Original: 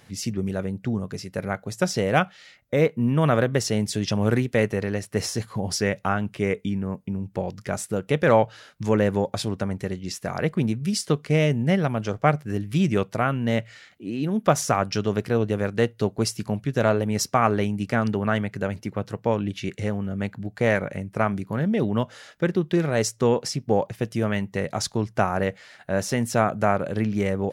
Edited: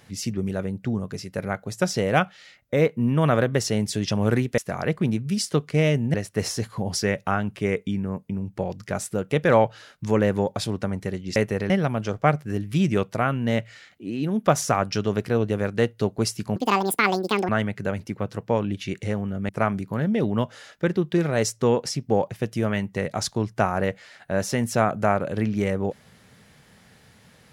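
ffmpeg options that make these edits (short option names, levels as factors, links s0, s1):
-filter_complex "[0:a]asplit=8[s0][s1][s2][s3][s4][s5][s6][s7];[s0]atrim=end=4.582[s8];[s1]atrim=start=10.138:end=11.702[s9];[s2]atrim=start=4.918:end=10.142[s10];[s3]atrim=start=4.578:end=4.922[s11];[s4]atrim=start=11.698:end=16.564[s12];[s5]atrim=start=16.56:end=18.25,asetpts=PTS-STARTPTS,asetrate=80262,aresample=44100[s13];[s6]atrim=start=18.246:end=20.252[s14];[s7]atrim=start=21.078[s15];[s8][s9]acrossfade=d=0.004:c1=hsin:c2=hsin[s16];[s16][s10]acrossfade=d=0.004:c1=hsin:c2=hsin[s17];[s17][s11]acrossfade=d=0.004:c1=hsin:c2=hsin[s18];[s18][s12]acrossfade=d=0.004:c1=hsin:c2=hsin[s19];[s19][s13]acrossfade=d=0.004:c1=hsin:c2=hsin[s20];[s20][s14]acrossfade=d=0.004:c1=hsin:c2=hsin[s21];[s21][s15]acrossfade=d=0.004:c1=hsin:c2=hsin"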